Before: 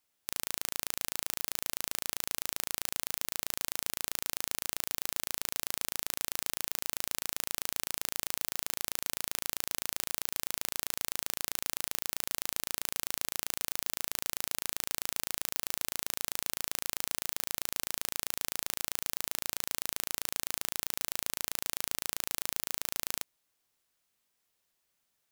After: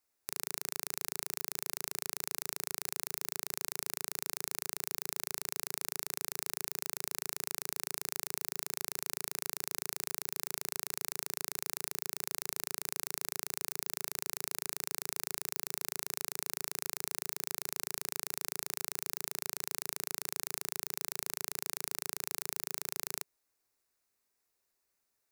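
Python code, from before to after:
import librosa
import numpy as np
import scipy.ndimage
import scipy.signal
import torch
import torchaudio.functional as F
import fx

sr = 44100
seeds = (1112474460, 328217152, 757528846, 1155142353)

y = fx.graphic_eq_31(x, sr, hz=(160, 400, 3150), db=(-9, 5, -11))
y = y * 10.0 ** (-2.5 / 20.0)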